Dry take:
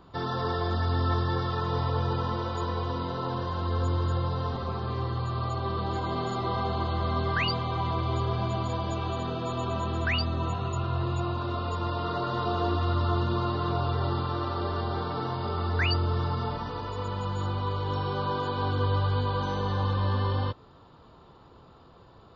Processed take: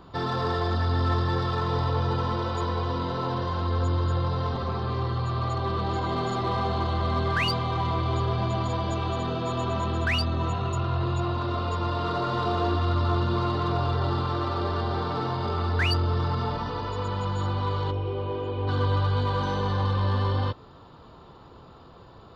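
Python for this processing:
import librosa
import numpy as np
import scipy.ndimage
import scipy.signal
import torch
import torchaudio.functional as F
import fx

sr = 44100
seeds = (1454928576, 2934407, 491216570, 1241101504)

p1 = fx.curve_eq(x, sr, hz=(110.0, 160.0, 370.0, 1700.0, 2500.0, 4100.0), db=(0, -14, 2, -17, 0, -18), at=(17.9, 18.67), fade=0.02)
p2 = 10.0 ** (-32.5 / 20.0) * np.tanh(p1 / 10.0 ** (-32.5 / 20.0))
y = p1 + (p2 * 10.0 ** (-3.0 / 20.0))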